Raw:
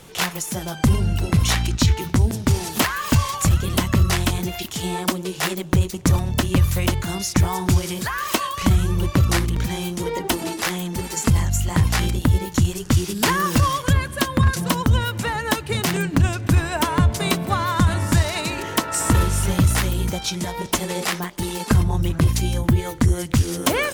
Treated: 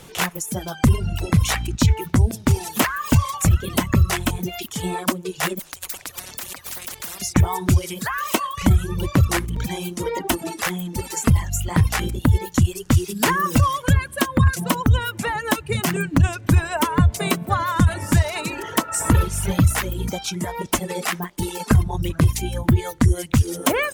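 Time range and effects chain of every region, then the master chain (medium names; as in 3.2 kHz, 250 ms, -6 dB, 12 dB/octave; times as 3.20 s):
5.59–7.22 s: compressor with a negative ratio -25 dBFS + spectrum-flattening compressor 10:1
whole clip: reverb removal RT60 1.2 s; dynamic bell 4.4 kHz, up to -6 dB, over -40 dBFS, Q 1.4; trim +1.5 dB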